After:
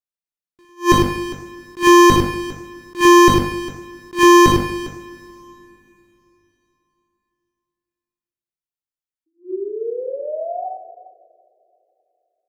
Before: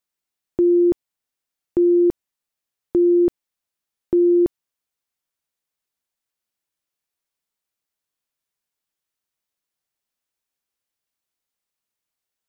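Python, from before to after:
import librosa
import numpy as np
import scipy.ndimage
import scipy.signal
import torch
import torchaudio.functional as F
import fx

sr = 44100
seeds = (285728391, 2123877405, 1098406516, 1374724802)

y = fx.low_shelf(x, sr, hz=190.0, db=6.5)
y = fx.hum_notches(y, sr, base_hz=50, count=5)
y = fx.leveller(y, sr, passes=5)
y = fx.rider(y, sr, range_db=10, speed_s=0.5)
y = fx.leveller(y, sr, passes=3)
y = fx.spec_paint(y, sr, seeds[0], shape='rise', start_s=9.26, length_s=1.41, low_hz=320.0, high_hz=760.0, level_db=-30.0)
y = fx.echo_multitap(y, sr, ms=(58, 59, 103, 123, 239, 404), db=(-17.5, -6.0, -6.5, -18.0, -18.0, -16.0))
y = fx.rev_double_slope(y, sr, seeds[1], early_s=0.54, late_s=3.3, knee_db=-17, drr_db=7.0)
y = fx.attack_slew(y, sr, db_per_s=270.0)
y = y * 10.0 ** (2.5 / 20.0)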